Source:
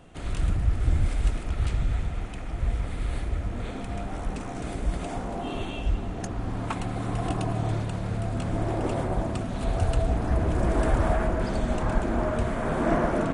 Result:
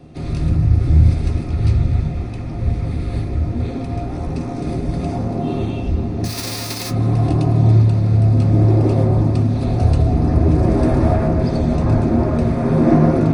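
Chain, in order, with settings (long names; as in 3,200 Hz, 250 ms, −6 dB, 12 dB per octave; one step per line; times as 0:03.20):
0:06.24–0:06.89: spectral envelope flattened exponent 0.1
convolution reverb RT60 0.30 s, pre-delay 3 ms, DRR 1.5 dB
level −2 dB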